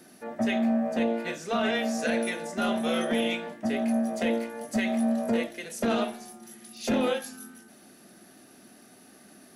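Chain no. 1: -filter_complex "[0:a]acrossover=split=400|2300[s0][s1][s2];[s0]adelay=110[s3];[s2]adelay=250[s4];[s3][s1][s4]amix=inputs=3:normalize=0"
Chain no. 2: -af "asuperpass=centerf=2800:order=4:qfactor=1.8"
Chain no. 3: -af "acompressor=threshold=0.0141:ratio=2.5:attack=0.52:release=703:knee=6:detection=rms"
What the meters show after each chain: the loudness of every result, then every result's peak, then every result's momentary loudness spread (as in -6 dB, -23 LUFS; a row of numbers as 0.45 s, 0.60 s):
-29.5 LUFS, -39.5 LUFS, -39.5 LUFS; -16.0 dBFS, -22.5 dBFS, -27.5 dBFS; 13 LU, 11 LU, 15 LU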